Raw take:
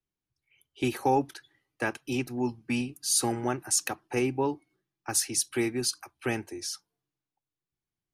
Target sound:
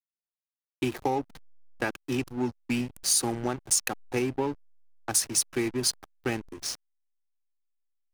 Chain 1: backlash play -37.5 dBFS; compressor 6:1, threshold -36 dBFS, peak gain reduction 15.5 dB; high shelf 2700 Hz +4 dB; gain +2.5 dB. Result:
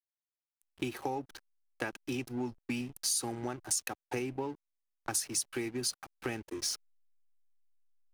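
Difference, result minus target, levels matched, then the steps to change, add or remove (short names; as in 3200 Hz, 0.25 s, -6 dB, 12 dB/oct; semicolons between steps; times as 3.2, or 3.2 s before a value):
compressor: peak gain reduction +8.5 dB; backlash: distortion -6 dB
change: backlash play -30.5 dBFS; change: compressor 6:1, threshold -26 dBFS, peak gain reduction 7 dB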